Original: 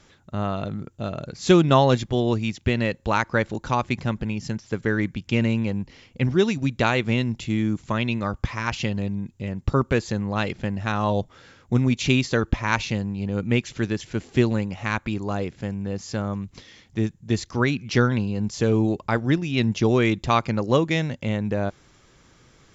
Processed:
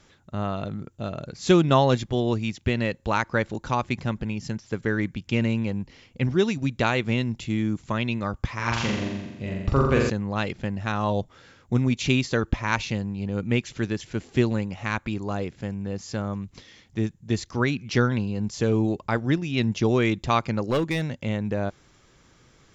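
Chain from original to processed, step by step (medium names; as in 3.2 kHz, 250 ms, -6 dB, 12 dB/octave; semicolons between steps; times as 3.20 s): 8.55–10.10 s: flutter echo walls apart 7.4 m, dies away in 1.1 s; 20.70–21.19 s: overload inside the chain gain 16.5 dB; trim -2 dB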